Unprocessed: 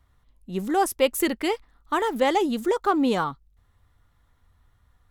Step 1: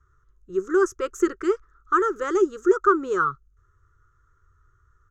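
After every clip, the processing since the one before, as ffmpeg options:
ffmpeg -i in.wav -af "firequalizer=gain_entry='entry(140,0);entry(220,-24);entry(370,9);entry(700,-26);entry(1300,13);entry(2100,-13);entry(4200,-18);entry(6500,5);entry(9500,-23);entry(14000,-25)':delay=0.05:min_phase=1" out.wav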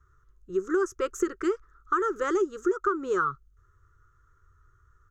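ffmpeg -i in.wav -af "acompressor=threshold=-22dB:ratio=6" out.wav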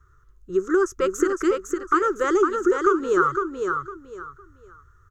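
ffmpeg -i in.wav -af "aecho=1:1:507|1014|1521:0.562|0.141|0.0351,volume=5.5dB" out.wav

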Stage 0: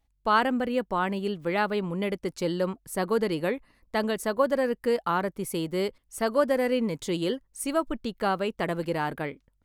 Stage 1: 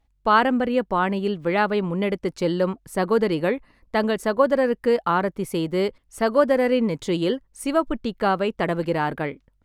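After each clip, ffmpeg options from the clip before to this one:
ffmpeg -i in.wav -af "lowpass=frequency=3800:poles=1,volume=5.5dB" out.wav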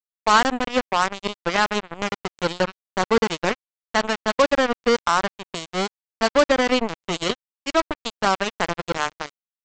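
ffmpeg -i in.wav -af "highshelf=frequency=3600:gain=10.5,aresample=16000,acrusher=bits=2:mix=0:aa=0.5,aresample=44100" out.wav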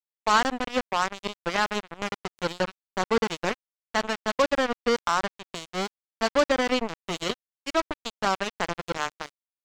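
ffmpeg -i in.wav -af "aeval=exprs='sgn(val(0))*max(abs(val(0))-0.0119,0)':channel_layout=same,volume=-4.5dB" out.wav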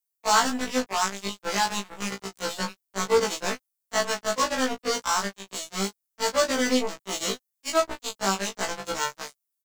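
ffmpeg -i in.wav -filter_complex "[0:a]acrossover=split=180|700|4000[link_01][link_02][link_03][link_04];[link_04]crystalizer=i=3.5:c=0[link_05];[link_01][link_02][link_03][link_05]amix=inputs=4:normalize=0,asplit=2[link_06][link_07];[link_07]adelay=20,volume=-5dB[link_08];[link_06][link_08]amix=inputs=2:normalize=0,afftfilt=real='re*1.73*eq(mod(b,3),0)':imag='im*1.73*eq(mod(b,3),0)':win_size=2048:overlap=0.75" out.wav

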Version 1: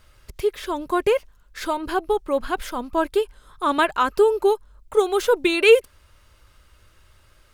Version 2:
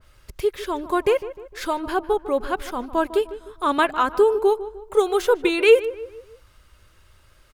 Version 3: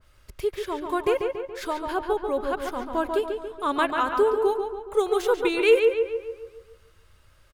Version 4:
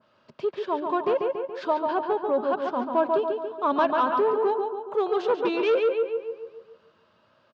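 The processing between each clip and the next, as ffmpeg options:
ffmpeg -i in.wav -filter_complex "[0:a]asplit=2[link_01][link_02];[link_02]adelay=152,lowpass=frequency=1800:poles=1,volume=-14dB,asplit=2[link_03][link_04];[link_04]adelay=152,lowpass=frequency=1800:poles=1,volume=0.46,asplit=2[link_05][link_06];[link_06]adelay=152,lowpass=frequency=1800:poles=1,volume=0.46,asplit=2[link_07][link_08];[link_08]adelay=152,lowpass=frequency=1800:poles=1,volume=0.46[link_09];[link_01][link_03][link_05][link_07][link_09]amix=inputs=5:normalize=0,adynamicequalizer=threshold=0.0178:dfrequency=2200:dqfactor=0.7:tfrequency=2200:tqfactor=0.7:attack=5:release=100:ratio=0.375:range=2.5:mode=cutabove:tftype=highshelf" out.wav
ffmpeg -i in.wav -filter_complex "[0:a]asplit=2[link_01][link_02];[link_02]adelay=141,lowpass=frequency=3500:poles=1,volume=-5dB,asplit=2[link_03][link_04];[link_04]adelay=141,lowpass=frequency=3500:poles=1,volume=0.52,asplit=2[link_05][link_06];[link_06]adelay=141,lowpass=frequency=3500:poles=1,volume=0.52,asplit=2[link_07][link_08];[link_08]adelay=141,lowpass=frequency=3500:poles=1,volume=0.52,asplit=2[link_09][link_10];[link_10]adelay=141,lowpass=frequency=3500:poles=1,volume=0.52,asplit=2[link_11][link_12];[link_12]adelay=141,lowpass=frequency=3500:poles=1,volume=0.52,asplit=2[link_13][link_14];[link_14]adelay=141,lowpass=frequency=3500:poles=1,volume=0.52[link_15];[link_01][link_03][link_05][link_07][link_09][link_11][link_13][link_15]amix=inputs=8:normalize=0,volume=-4.5dB" out.wav
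ffmpeg -i in.wav -af "asoftclip=type=tanh:threshold=-19dB,highpass=frequency=150:width=0.5412,highpass=frequency=150:width=1.3066,equalizer=frequency=160:width_type=q:width=4:gain=3,equalizer=frequency=230:width_type=q:width=4:gain=8,equalizer=frequency=630:width_type=q:width=4:gain=8,equalizer=frequency=970:width_type=q:width=4:gain=6,equalizer=frequency=2100:width_type=q:width=4:gain=-9,equalizer=frequency=3600:width_type=q:width=4:gain=-3,lowpass=frequency=4300:width=0.5412,lowpass=frequency=4300:width=1.3066" out.wav

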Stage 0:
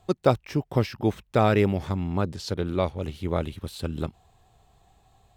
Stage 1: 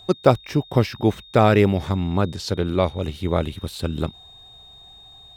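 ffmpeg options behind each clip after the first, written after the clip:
ffmpeg -i in.wav -af "aeval=exprs='val(0)+0.00355*sin(2*PI*3700*n/s)':channel_layout=same,volume=5dB" out.wav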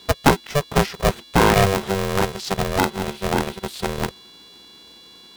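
ffmpeg -i in.wav -af "aeval=exprs='val(0)*sgn(sin(2*PI*290*n/s))':channel_layout=same" out.wav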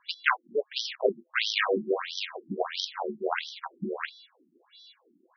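ffmpeg -i in.wav -af "acrusher=bits=7:dc=4:mix=0:aa=0.000001,afftfilt=real='re*between(b*sr/1024,240*pow(4400/240,0.5+0.5*sin(2*PI*1.5*pts/sr))/1.41,240*pow(4400/240,0.5+0.5*sin(2*PI*1.5*pts/sr))*1.41)':imag='im*between(b*sr/1024,240*pow(4400/240,0.5+0.5*sin(2*PI*1.5*pts/sr))/1.41,240*pow(4400/240,0.5+0.5*sin(2*PI*1.5*pts/sr))*1.41)':win_size=1024:overlap=0.75" out.wav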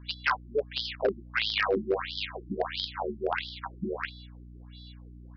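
ffmpeg -i in.wav -af "aeval=exprs='val(0)+0.00501*(sin(2*PI*60*n/s)+sin(2*PI*2*60*n/s)/2+sin(2*PI*3*60*n/s)/3+sin(2*PI*4*60*n/s)/4+sin(2*PI*5*60*n/s)/5)':channel_layout=same,aresample=11025,asoftclip=type=hard:threshold=-18dB,aresample=44100" out.wav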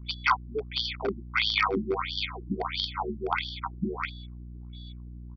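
ffmpeg -i in.wav -af "anlmdn=0.00251,aecho=1:1:0.9:0.98" out.wav

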